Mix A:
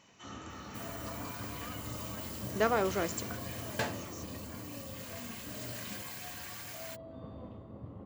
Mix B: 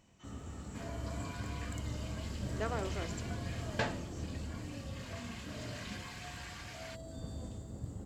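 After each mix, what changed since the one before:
speech -9.5 dB; first sound: remove cabinet simulation 110–2800 Hz, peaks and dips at 150 Hz -4 dB, 560 Hz +4 dB, 1.1 kHz +10 dB, 1.6 kHz -7 dB; second sound: add low-pass 5.3 kHz 12 dB/octave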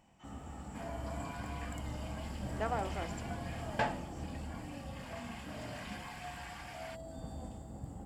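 master: add graphic EQ with 31 bands 100 Hz -10 dB, 400 Hz -5 dB, 800 Hz +11 dB, 4 kHz -8 dB, 6.3 kHz -9 dB, 10 kHz +3 dB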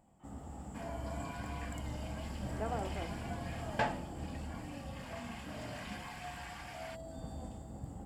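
speech: add band-pass filter 290 Hz, Q 0.52

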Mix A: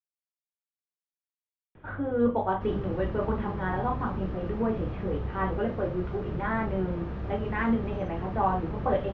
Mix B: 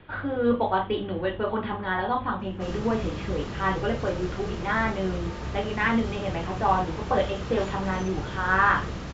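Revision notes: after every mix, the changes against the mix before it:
speech: entry -1.75 s; master: remove tape spacing loss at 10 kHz 42 dB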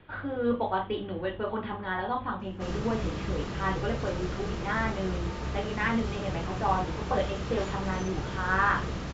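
speech -4.5 dB

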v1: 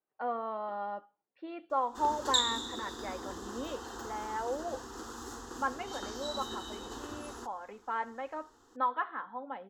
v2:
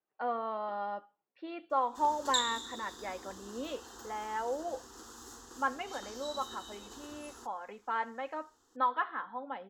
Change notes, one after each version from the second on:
background -9.0 dB; master: add treble shelf 3.3 kHz +9 dB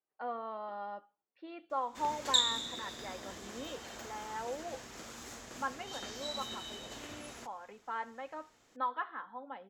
speech -5.0 dB; background: remove static phaser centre 610 Hz, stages 6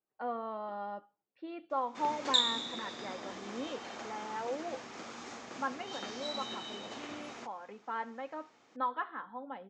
background: add cabinet simulation 230–6300 Hz, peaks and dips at 810 Hz +5 dB, 1.2 kHz +5 dB, 2.3 kHz +4 dB; master: add bass shelf 350 Hz +8.5 dB

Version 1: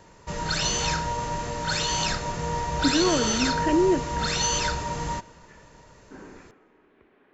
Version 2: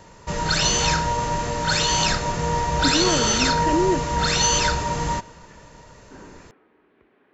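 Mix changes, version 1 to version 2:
speech: send off; background +5.5 dB

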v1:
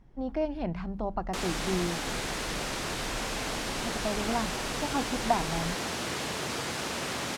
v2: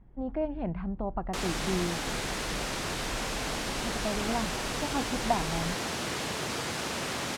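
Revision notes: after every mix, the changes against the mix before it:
speech: add distance through air 440 m; master: remove hum notches 50/100/150/200 Hz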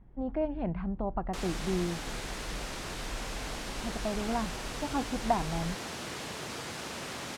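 background -6.0 dB

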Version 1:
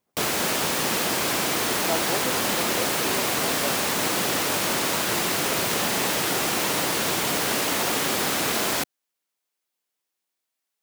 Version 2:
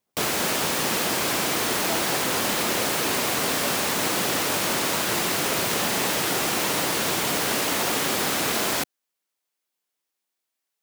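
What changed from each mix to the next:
speech -5.0 dB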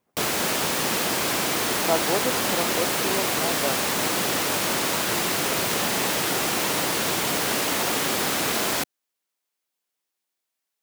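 speech +10.0 dB

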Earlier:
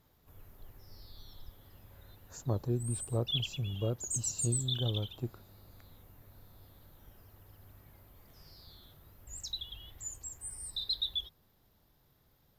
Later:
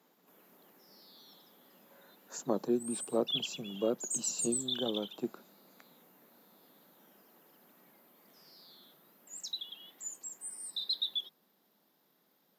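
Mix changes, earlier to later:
speech +5.5 dB; master: add steep high-pass 180 Hz 48 dB/octave

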